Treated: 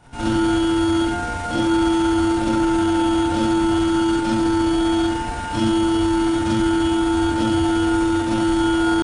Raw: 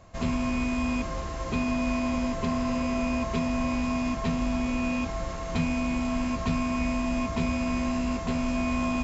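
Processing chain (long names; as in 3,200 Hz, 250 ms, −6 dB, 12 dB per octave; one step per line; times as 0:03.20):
four-comb reverb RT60 0.66 s, combs from 32 ms, DRR −6.5 dB
pitch shifter +5 semitones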